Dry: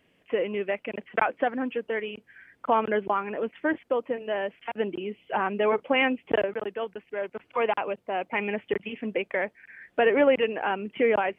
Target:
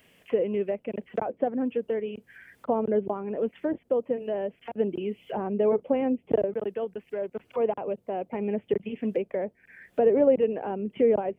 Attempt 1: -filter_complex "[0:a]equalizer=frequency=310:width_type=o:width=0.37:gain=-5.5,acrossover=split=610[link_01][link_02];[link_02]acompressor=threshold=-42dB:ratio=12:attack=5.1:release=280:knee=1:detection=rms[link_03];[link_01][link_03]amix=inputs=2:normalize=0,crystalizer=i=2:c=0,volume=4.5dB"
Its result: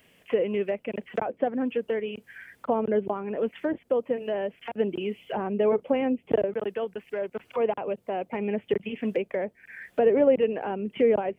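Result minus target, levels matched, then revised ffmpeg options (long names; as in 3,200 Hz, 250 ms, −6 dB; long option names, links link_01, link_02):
downward compressor: peak gain reduction −7.5 dB
-filter_complex "[0:a]equalizer=frequency=310:width_type=o:width=0.37:gain=-5.5,acrossover=split=610[link_01][link_02];[link_02]acompressor=threshold=-50dB:ratio=12:attack=5.1:release=280:knee=1:detection=rms[link_03];[link_01][link_03]amix=inputs=2:normalize=0,crystalizer=i=2:c=0,volume=4.5dB"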